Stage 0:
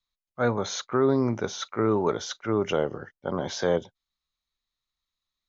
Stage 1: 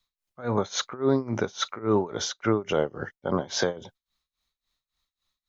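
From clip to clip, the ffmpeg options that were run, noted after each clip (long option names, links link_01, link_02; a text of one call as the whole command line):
ffmpeg -i in.wav -af "alimiter=limit=-19.5dB:level=0:latency=1:release=186,tremolo=f=3.6:d=0.91,volume=8.5dB" out.wav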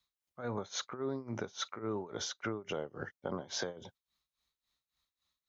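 ffmpeg -i in.wav -af "highpass=50,acompressor=threshold=-32dB:ratio=4,volume=-3.5dB" out.wav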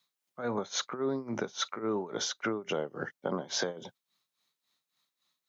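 ffmpeg -i in.wav -af "highpass=frequency=140:width=0.5412,highpass=frequency=140:width=1.3066,volume=5.5dB" out.wav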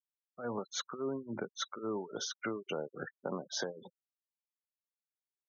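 ffmpeg -i in.wav -af "afftfilt=real='re*gte(hypot(re,im),0.0178)':imag='im*gte(hypot(re,im),0.0178)':win_size=1024:overlap=0.75,volume=-5dB" out.wav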